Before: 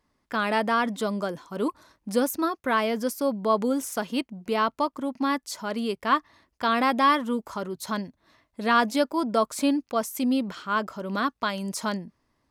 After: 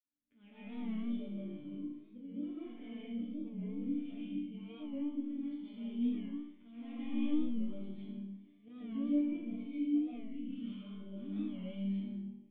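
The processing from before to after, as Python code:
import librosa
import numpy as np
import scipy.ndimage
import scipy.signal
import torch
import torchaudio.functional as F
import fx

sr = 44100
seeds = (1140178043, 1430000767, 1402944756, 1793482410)

p1 = fx.fade_in_head(x, sr, length_s=0.73)
p2 = fx.peak_eq(p1, sr, hz=79.0, db=-6.5, octaves=0.47)
p3 = fx.hpss(p2, sr, part='harmonic', gain_db=8)
p4 = fx.peak_eq(p3, sr, hz=3400.0, db=2.5, octaves=2.1)
p5 = fx.auto_swell(p4, sr, attack_ms=311.0)
p6 = fx.over_compress(p5, sr, threshold_db=-31.0, ratio=-1.0)
p7 = p5 + F.gain(torch.from_numpy(p6), -1.0).numpy()
p8 = np.clip(p7, -10.0 ** (-14.5 / 20.0), 10.0 ** (-14.5 / 20.0))
p9 = fx.formant_cascade(p8, sr, vowel='i')
p10 = fx.resonator_bank(p9, sr, root=43, chord='minor', decay_s=0.76)
p11 = fx.rev_freeverb(p10, sr, rt60_s=0.81, hf_ratio=0.75, predelay_ms=90, drr_db=-8.0)
p12 = fx.record_warp(p11, sr, rpm=45.0, depth_cents=100.0)
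y = F.gain(torch.from_numpy(p12), -1.5).numpy()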